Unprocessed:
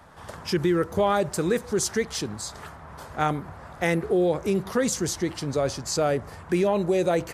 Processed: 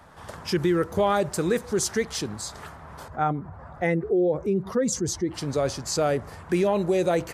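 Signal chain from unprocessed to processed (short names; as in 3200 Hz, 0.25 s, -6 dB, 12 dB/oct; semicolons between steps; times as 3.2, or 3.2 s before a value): 3.08–5.34 spectral contrast raised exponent 1.5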